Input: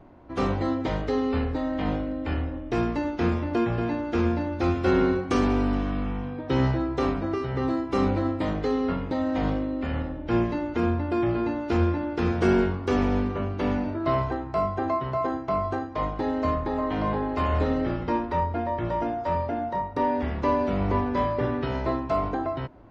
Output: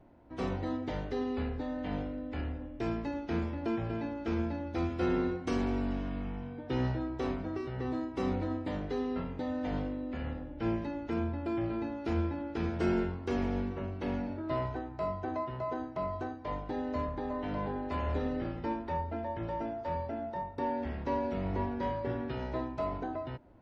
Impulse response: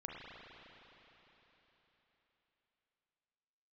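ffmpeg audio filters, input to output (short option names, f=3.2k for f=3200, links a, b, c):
-af "equalizer=f=1.2k:t=o:w=0.22:g=-6.5,asetrate=42777,aresample=44100,volume=-8.5dB"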